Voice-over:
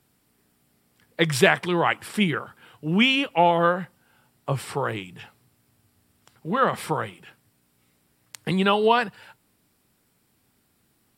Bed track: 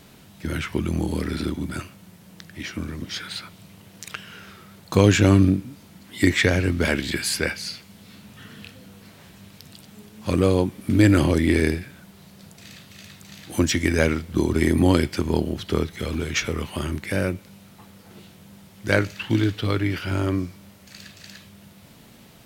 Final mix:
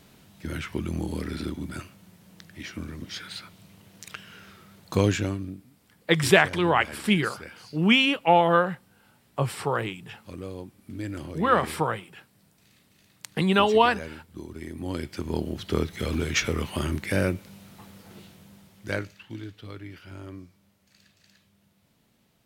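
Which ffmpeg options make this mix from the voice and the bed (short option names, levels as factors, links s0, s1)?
-filter_complex "[0:a]adelay=4900,volume=1[s0];[1:a]volume=4.22,afade=t=out:st=5.01:d=0.37:silence=0.223872,afade=t=in:st=14.79:d=1.32:silence=0.125893,afade=t=out:st=17.97:d=1.27:silence=0.141254[s1];[s0][s1]amix=inputs=2:normalize=0"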